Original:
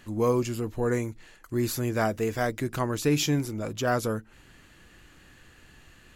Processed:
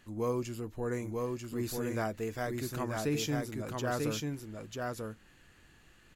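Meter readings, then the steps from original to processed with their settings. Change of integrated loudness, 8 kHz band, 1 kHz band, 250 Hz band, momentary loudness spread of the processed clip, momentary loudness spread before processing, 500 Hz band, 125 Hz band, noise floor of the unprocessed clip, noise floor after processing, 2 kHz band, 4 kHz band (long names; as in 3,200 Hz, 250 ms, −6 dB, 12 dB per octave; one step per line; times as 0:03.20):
−7.5 dB, −7.0 dB, −6.5 dB, −6.5 dB, 7 LU, 7 LU, −7.0 dB, −7.0 dB, −56 dBFS, −62 dBFS, −6.5 dB, −6.5 dB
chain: single-tap delay 942 ms −3 dB
level −8.5 dB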